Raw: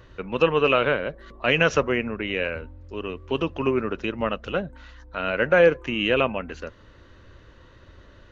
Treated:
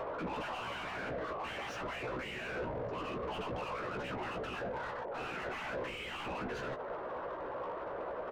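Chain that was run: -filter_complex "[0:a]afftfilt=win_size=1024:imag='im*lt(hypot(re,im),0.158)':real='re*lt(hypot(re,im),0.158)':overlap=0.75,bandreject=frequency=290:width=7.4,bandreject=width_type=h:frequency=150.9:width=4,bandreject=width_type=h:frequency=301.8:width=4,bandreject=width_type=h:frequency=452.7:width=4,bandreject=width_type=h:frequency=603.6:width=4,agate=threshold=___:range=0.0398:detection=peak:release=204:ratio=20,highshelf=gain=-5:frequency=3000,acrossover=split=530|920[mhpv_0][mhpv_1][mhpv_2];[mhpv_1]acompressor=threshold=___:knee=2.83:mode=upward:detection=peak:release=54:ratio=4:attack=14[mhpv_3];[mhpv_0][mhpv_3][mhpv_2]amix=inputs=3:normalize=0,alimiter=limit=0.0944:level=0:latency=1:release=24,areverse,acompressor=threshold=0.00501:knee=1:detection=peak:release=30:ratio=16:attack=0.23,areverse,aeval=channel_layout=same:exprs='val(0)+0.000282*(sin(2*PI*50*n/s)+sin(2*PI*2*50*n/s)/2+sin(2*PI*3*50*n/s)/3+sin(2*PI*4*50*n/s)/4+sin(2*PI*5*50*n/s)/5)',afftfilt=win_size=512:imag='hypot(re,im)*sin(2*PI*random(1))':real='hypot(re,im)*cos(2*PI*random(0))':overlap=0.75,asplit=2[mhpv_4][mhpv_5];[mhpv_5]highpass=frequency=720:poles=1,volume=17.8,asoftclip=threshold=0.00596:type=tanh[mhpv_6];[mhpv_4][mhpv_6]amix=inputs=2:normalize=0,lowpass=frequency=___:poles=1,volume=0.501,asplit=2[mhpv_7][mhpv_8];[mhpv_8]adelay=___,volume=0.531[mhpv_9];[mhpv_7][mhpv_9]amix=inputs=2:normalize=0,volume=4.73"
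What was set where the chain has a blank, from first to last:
0.00794, 0.00501, 1100, 16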